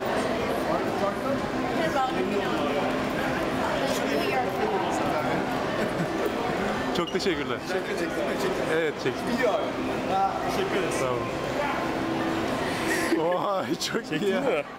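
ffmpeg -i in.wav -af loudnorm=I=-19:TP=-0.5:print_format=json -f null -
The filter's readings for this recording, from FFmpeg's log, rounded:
"input_i" : "-26.7",
"input_tp" : "-13.0",
"input_lra" : "0.8",
"input_thresh" : "-36.7",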